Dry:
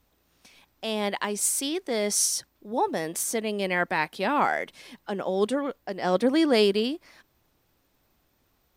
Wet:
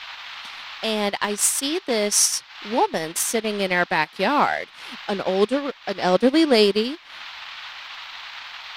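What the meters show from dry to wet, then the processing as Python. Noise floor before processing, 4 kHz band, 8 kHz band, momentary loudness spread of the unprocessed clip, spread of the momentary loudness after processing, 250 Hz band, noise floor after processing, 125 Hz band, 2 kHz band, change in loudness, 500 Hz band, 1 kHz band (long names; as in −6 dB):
−70 dBFS, +7.0 dB, +5.5 dB, 11 LU, 17 LU, +4.0 dB, −47 dBFS, +4.0 dB, +5.5 dB, +5.0 dB, +4.5 dB, +5.0 dB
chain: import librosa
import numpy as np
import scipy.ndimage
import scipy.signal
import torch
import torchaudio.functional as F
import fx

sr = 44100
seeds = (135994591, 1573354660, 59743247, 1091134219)

y = fx.dmg_noise_band(x, sr, seeds[0], low_hz=810.0, high_hz=4000.0, level_db=-41.0)
y = fx.transient(y, sr, attack_db=3, sustain_db=-11)
y = fx.dynamic_eq(y, sr, hz=5100.0, q=2.0, threshold_db=-46.0, ratio=4.0, max_db=4)
y = y * 10.0 ** (4.0 / 20.0)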